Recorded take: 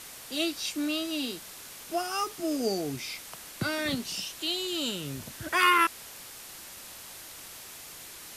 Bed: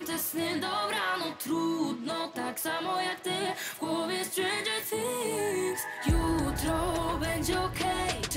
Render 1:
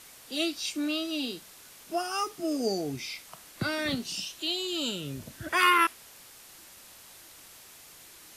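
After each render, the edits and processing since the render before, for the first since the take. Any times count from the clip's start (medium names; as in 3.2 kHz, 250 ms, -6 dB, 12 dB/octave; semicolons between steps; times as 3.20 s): noise print and reduce 6 dB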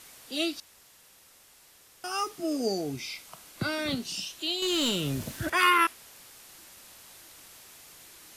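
0.60–2.04 s: room tone; 2.86–3.96 s: band-stop 1.8 kHz; 4.62–5.50 s: waveshaping leveller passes 2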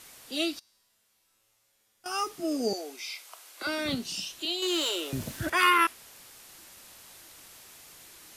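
0.59–2.06 s: feedback comb 110 Hz, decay 1.1 s, mix 90%; 2.73–3.67 s: Bessel high-pass 560 Hz, order 6; 4.45–5.13 s: elliptic high-pass 330 Hz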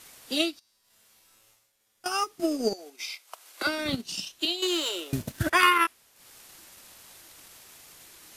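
reverse; upward compressor, threshold -50 dBFS; reverse; transient shaper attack +8 dB, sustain -10 dB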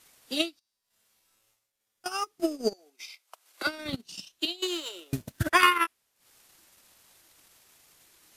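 transient shaper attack +3 dB, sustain -5 dB; upward expansion 1.5:1, over -34 dBFS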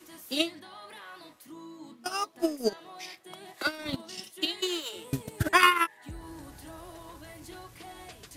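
add bed -16.5 dB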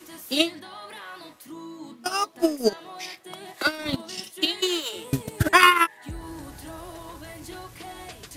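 trim +6 dB; peak limiter -3 dBFS, peak gain reduction 2 dB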